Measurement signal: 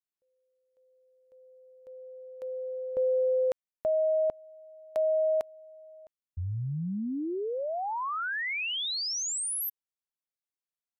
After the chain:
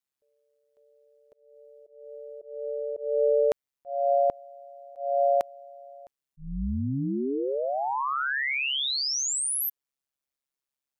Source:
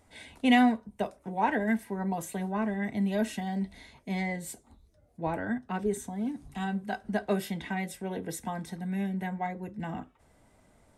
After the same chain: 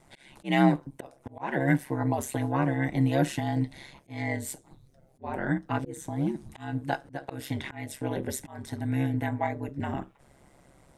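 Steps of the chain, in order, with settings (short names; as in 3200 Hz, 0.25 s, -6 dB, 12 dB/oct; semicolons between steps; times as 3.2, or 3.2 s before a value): auto swell 0.272 s; ring modulator 68 Hz; gain +7 dB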